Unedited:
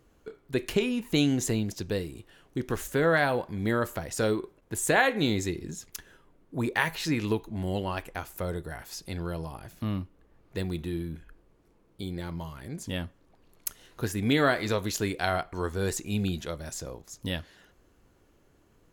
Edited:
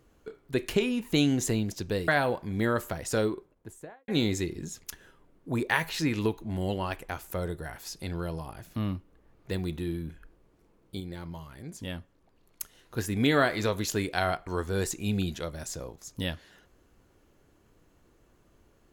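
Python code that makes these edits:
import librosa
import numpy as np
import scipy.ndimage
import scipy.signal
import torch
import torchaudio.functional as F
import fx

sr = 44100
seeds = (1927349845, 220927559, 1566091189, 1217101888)

y = fx.studio_fade_out(x, sr, start_s=4.14, length_s=1.0)
y = fx.edit(y, sr, fx.cut(start_s=2.08, length_s=1.06),
    fx.clip_gain(start_s=12.06, length_s=1.98, db=-4.0), tone=tone)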